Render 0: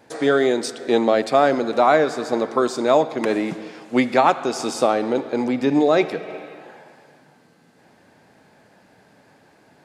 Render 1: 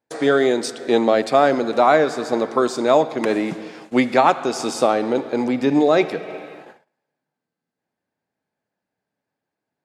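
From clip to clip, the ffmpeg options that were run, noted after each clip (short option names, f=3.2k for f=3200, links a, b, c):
-af "agate=range=-30dB:threshold=-41dB:ratio=16:detection=peak,volume=1dB"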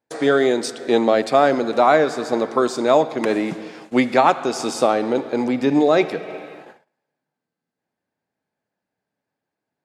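-af anull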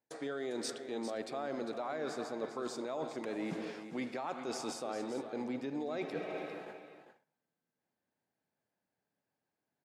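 -af "alimiter=limit=-11dB:level=0:latency=1:release=112,areverse,acompressor=threshold=-30dB:ratio=6,areverse,aecho=1:1:400:0.299,volume=-6.5dB"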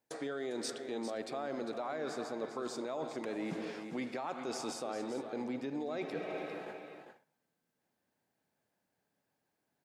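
-af "acompressor=threshold=-49dB:ratio=1.5,volume=5dB"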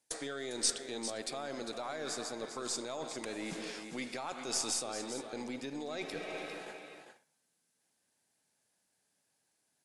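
-af "crystalizer=i=6:c=0,aeval=exprs='0.224*(cos(1*acos(clip(val(0)/0.224,-1,1)))-cos(1*PI/2))+0.00794*(cos(8*acos(clip(val(0)/0.224,-1,1)))-cos(8*PI/2))':c=same,volume=-3.5dB" -ar 24000 -c:a aac -b:a 96k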